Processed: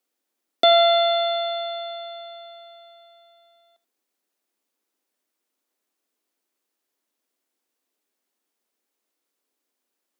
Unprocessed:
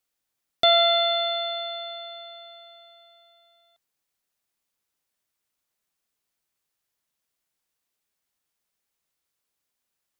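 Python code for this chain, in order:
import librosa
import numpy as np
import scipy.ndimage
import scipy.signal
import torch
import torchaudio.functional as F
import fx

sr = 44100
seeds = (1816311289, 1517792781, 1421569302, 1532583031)

y = scipy.signal.sosfilt(scipy.signal.cheby1(3, 1.0, 250.0, 'highpass', fs=sr, output='sos'), x)
y = fx.peak_eq(y, sr, hz=330.0, db=10.0, octaves=2.3)
y = y + 10.0 ** (-18.5 / 20.0) * np.pad(y, (int(81 * sr / 1000.0), 0))[:len(y)]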